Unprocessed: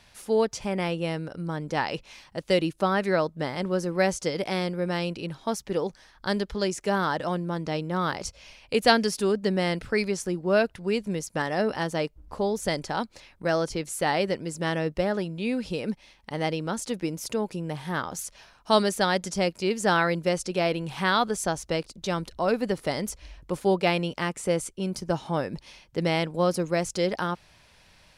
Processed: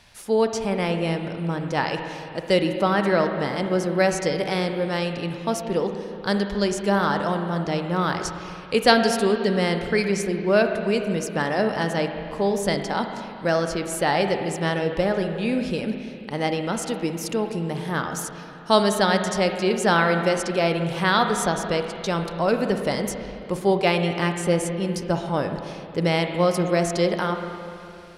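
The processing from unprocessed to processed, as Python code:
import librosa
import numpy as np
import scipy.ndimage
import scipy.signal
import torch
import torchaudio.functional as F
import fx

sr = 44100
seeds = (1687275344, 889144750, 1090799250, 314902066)

y = fx.rev_spring(x, sr, rt60_s=2.7, pass_ms=(35, 54, 60), chirp_ms=25, drr_db=5.5)
y = y * 10.0 ** (3.0 / 20.0)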